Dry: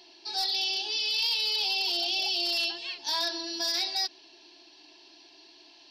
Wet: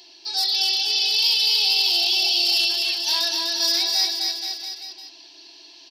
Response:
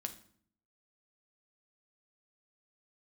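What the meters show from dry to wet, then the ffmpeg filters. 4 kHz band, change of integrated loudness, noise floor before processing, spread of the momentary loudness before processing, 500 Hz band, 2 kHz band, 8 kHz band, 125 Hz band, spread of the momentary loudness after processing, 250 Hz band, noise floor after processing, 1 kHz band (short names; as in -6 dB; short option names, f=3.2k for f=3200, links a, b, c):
+9.0 dB, +8.5 dB, -56 dBFS, 5 LU, +2.5 dB, +6.0 dB, +11.0 dB, n/a, 11 LU, +2.0 dB, -48 dBFS, +3.0 dB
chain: -af "highshelf=f=3.6k:g=12,aecho=1:1:250|475|677.5|859.8|1024:0.631|0.398|0.251|0.158|0.1"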